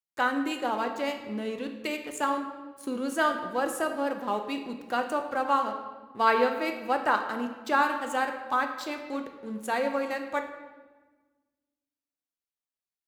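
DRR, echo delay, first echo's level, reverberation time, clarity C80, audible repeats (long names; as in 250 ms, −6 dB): 4.5 dB, no echo audible, no echo audible, 1.3 s, 9.0 dB, no echo audible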